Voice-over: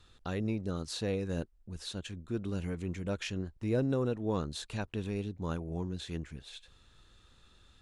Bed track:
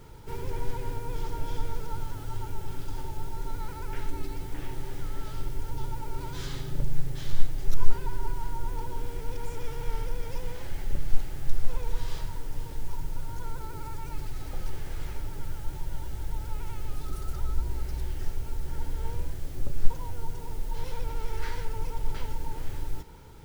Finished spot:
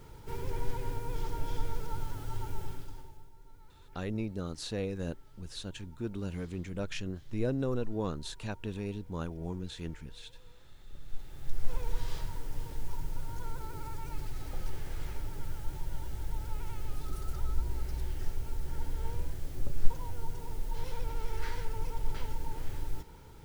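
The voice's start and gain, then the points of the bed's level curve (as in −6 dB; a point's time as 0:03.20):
3.70 s, −1.5 dB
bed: 0:02.64 −2.5 dB
0:03.33 −22 dB
0:10.80 −22 dB
0:11.73 −3 dB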